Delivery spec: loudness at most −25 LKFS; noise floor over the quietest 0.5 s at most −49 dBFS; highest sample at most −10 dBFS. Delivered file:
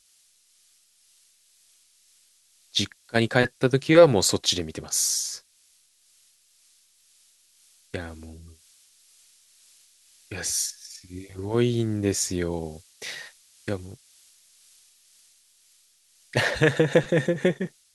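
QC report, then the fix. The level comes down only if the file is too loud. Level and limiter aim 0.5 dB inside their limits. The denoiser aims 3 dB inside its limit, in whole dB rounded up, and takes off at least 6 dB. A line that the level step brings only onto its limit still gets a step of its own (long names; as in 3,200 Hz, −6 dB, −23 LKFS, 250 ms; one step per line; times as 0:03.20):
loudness −24.0 LKFS: out of spec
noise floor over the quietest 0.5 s −62 dBFS: in spec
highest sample −3.5 dBFS: out of spec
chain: level −1.5 dB
brickwall limiter −10.5 dBFS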